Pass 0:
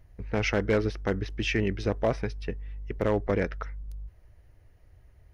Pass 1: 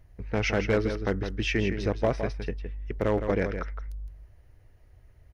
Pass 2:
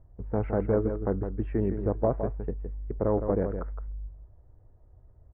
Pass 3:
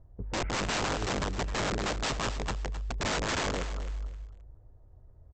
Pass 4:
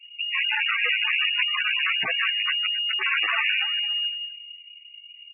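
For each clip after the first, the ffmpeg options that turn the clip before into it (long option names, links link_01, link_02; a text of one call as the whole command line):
ffmpeg -i in.wav -filter_complex "[0:a]asplit=2[link_01][link_02];[link_02]adelay=163.3,volume=-8dB,highshelf=frequency=4000:gain=-3.67[link_03];[link_01][link_03]amix=inputs=2:normalize=0" out.wav
ffmpeg -i in.wav -af "lowpass=frequency=1100:width=0.5412,lowpass=frequency=1100:width=1.3066" out.wav
ffmpeg -i in.wav -af "aresample=16000,aeval=exprs='(mod(18.8*val(0)+1,2)-1)/18.8':channel_layout=same,aresample=44100,aecho=1:1:262|524|786:0.251|0.0653|0.017" out.wav
ffmpeg -i in.wav -af "lowpass=frequency=2500:width_type=q:width=0.5098,lowpass=frequency=2500:width_type=q:width=0.6013,lowpass=frequency=2500:width_type=q:width=0.9,lowpass=frequency=2500:width_type=q:width=2.563,afreqshift=-2900,volume=8dB" -ar 24000 -c:a libmp3lame -b:a 8k out.mp3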